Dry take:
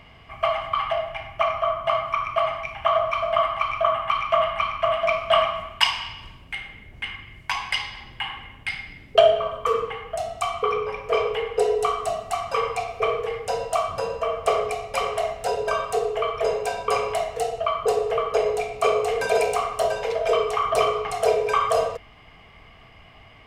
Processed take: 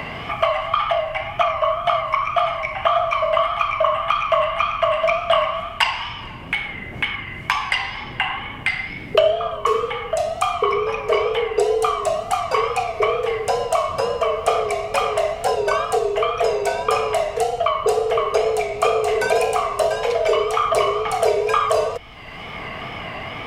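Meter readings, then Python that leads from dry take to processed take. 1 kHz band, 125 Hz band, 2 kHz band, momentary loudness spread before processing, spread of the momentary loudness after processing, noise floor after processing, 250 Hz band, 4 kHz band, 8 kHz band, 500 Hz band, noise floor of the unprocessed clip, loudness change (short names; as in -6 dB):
+4.0 dB, +5.5 dB, +5.5 dB, 10 LU, 6 LU, -34 dBFS, +7.0 dB, +2.0 dB, +4.0 dB, +3.5 dB, -49 dBFS, +3.5 dB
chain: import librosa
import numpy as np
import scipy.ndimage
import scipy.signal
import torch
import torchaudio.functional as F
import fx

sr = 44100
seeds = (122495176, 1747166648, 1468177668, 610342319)

y = fx.wow_flutter(x, sr, seeds[0], rate_hz=2.1, depth_cents=76.0)
y = fx.band_squash(y, sr, depth_pct=70)
y = y * librosa.db_to_amplitude(3.5)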